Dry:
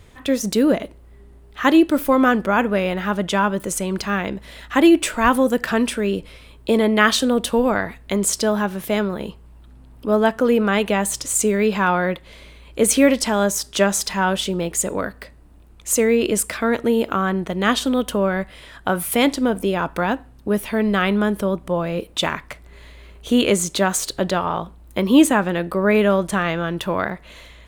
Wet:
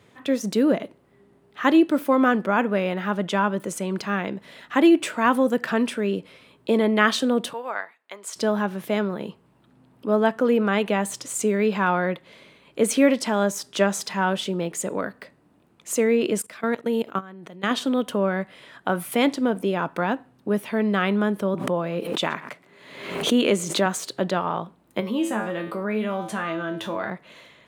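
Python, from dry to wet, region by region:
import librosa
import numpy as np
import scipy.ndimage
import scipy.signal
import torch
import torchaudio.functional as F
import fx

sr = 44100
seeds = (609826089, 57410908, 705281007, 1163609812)

y = fx.chain(x, sr, fx.highpass(hz=860.0, slope=12),
    fx.high_shelf(hz=3300.0, db=-6.0),
    fx.upward_expand(threshold_db=-41.0, expansion=1.5), at=(7.53, 8.36))
y = fx.chain(y, sr, fx.high_shelf(hz=3000.0, db=4.5),
    fx.level_steps(step_db=19), at=(16.41, 17.71))
y = fx.chain(y, sr, fx.highpass(hz=140.0, slope=12),
    fx.echo_single(ms=124, db=-23.0),
    fx.pre_swell(db_per_s=60.0), at=(21.54, 23.86))
y = fx.chain(y, sr, fx.comb_fb(f0_hz=110.0, decay_s=0.36, harmonics='all', damping=0.0, mix_pct=90),
    fx.env_flatten(amount_pct=50), at=(25.0, 27.1))
y = scipy.signal.sosfilt(scipy.signal.butter(4, 130.0, 'highpass', fs=sr, output='sos'), y)
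y = fx.high_shelf(y, sr, hz=5000.0, db=-8.0)
y = y * 10.0 ** (-3.0 / 20.0)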